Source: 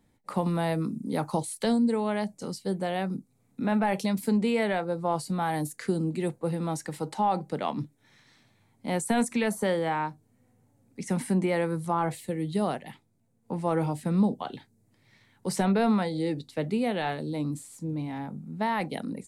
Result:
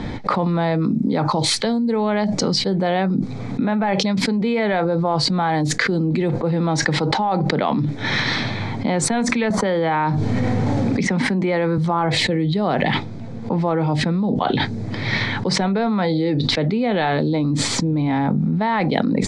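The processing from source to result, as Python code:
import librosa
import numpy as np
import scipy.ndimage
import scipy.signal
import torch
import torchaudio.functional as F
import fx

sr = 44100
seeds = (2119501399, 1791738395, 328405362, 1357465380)

y = fx.band_squash(x, sr, depth_pct=70, at=(9.5, 11.78))
y = scipy.signal.sosfilt(scipy.signal.butter(4, 4700.0, 'lowpass', fs=sr, output='sos'), y)
y = fx.notch(y, sr, hz=2800.0, q=9.8)
y = fx.env_flatten(y, sr, amount_pct=100)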